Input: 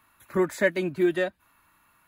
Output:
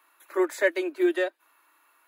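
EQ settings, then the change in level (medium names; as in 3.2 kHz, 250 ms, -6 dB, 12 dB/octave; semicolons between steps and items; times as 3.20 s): steep high-pass 300 Hz 72 dB/octave; 0.0 dB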